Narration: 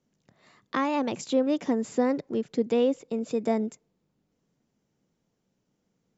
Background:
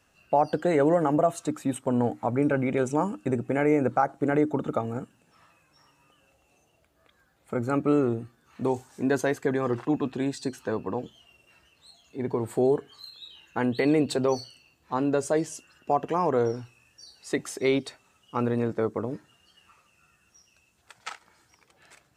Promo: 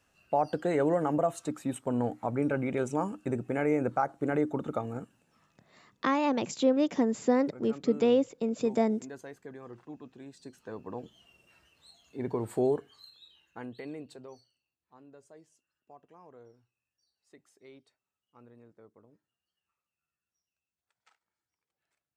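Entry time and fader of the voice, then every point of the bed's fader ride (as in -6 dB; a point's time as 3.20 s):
5.30 s, -0.5 dB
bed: 5.17 s -5 dB
5.85 s -19.5 dB
10.25 s -19.5 dB
11.26 s -4 dB
12.65 s -4 dB
14.78 s -29.5 dB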